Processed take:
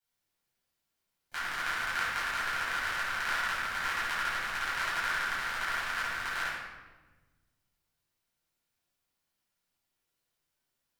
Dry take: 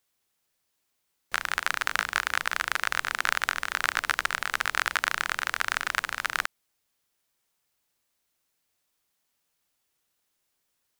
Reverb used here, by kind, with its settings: shoebox room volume 890 m³, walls mixed, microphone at 7.9 m; gain -18 dB

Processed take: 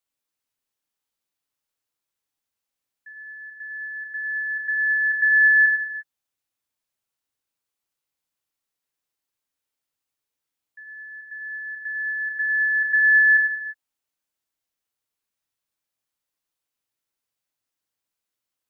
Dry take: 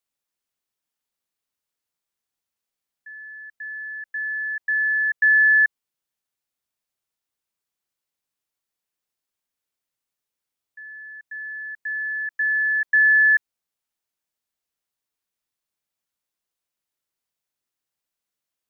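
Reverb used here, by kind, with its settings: non-linear reverb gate 0.38 s falling, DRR 2.5 dB; gain -1.5 dB

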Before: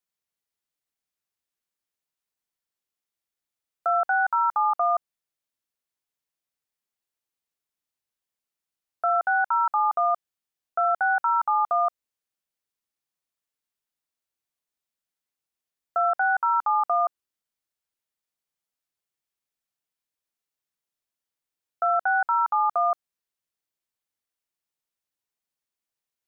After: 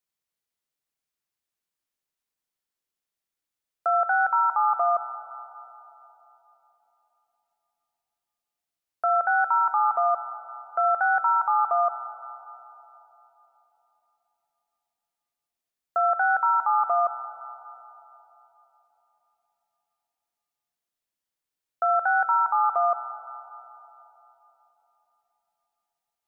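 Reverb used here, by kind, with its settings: digital reverb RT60 3.8 s, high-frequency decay 0.35×, pre-delay 25 ms, DRR 11 dB

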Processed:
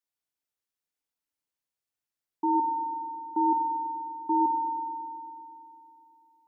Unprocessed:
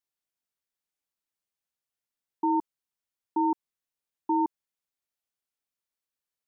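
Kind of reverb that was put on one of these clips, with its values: FDN reverb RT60 3 s, high-frequency decay 0.9×, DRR 4 dB; gain -2.5 dB

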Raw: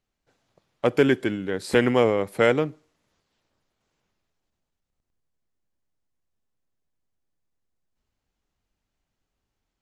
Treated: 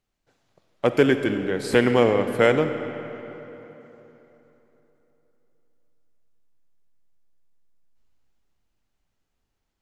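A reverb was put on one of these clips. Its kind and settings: digital reverb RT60 3.6 s, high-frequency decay 0.65×, pre-delay 10 ms, DRR 8 dB; gain +1 dB

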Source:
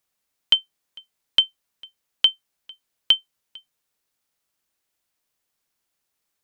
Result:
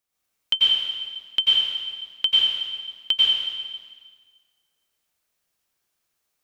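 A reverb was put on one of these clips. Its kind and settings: plate-style reverb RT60 1.6 s, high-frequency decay 0.95×, pre-delay 80 ms, DRR -7 dB; gain -5.5 dB

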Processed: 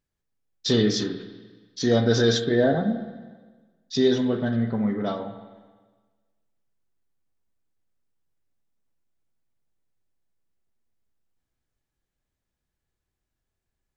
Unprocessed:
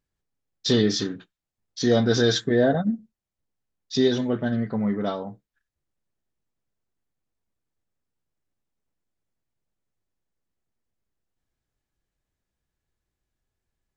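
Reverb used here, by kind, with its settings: spring tank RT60 1.4 s, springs 43/51/56 ms, chirp 25 ms, DRR 8.5 dB; gain -1 dB

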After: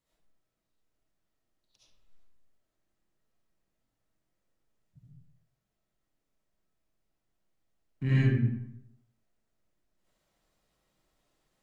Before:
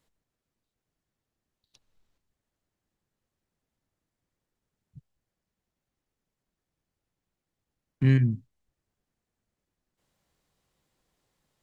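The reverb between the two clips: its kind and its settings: digital reverb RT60 0.79 s, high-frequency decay 0.65×, pre-delay 30 ms, DRR -10 dB; gain -9.5 dB

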